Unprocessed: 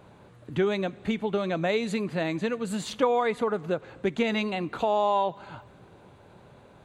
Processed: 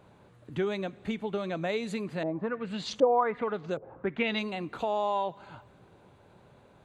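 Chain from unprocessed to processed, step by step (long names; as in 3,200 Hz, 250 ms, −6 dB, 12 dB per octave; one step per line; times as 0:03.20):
0:02.23–0:04.39: auto-filter low-pass saw up 1.3 Hz 520–7,600 Hz
level −5 dB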